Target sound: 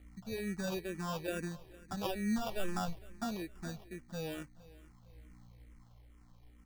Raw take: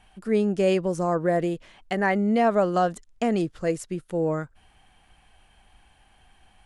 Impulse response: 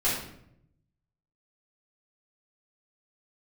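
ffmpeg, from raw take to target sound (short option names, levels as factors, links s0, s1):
-filter_complex "[0:a]asettb=1/sr,asplit=3[s0][s1][s2];[s0]atrim=end=2.384[s3];[s1]atrim=start=2.38:end=2.88,asetpts=PTS-STARTPTS,afade=t=in:d=0.004:c=qsin,afade=t=out:st=0.496:d=0.004:c=qsin,aeval=exprs='if(lt(val(0),0),0.251*val(0),val(0))':c=same[s4];[s2]atrim=start=2.876[s5];[s3][s4]acrossfade=d=0.004:c1=hsin:c2=qsin[s6];[s6][s5]acrossfade=d=0.004:c1=qsin:c2=hsin,lowpass=3400,equalizer=f=520:w=0.82:g=-9.5,aeval=exprs='val(0)+0.00316*(sin(2*PI*60*n/s)+sin(2*PI*2*60*n/s)/2+sin(2*PI*3*60*n/s)/3+sin(2*PI*4*60*n/s)/4+sin(2*PI*5*60*n/s)/5)':c=same,flanger=delay=0.1:depth=3.9:regen=56:speed=0.37:shape=sinusoidal,acrusher=samples=21:mix=1:aa=0.000001,aecho=1:1:459|918|1377:0.0944|0.0368|0.0144,asplit=2[s7][s8];[s8]afreqshift=-2.3[s9];[s7][s9]amix=inputs=2:normalize=1,volume=0.841"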